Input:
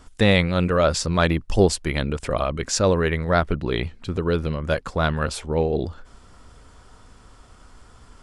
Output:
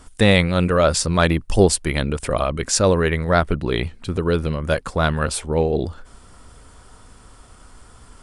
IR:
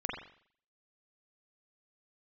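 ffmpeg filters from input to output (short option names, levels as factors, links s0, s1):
-af "equalizer=f=9300:t=o:w=0.38:g=10,volume=1.33"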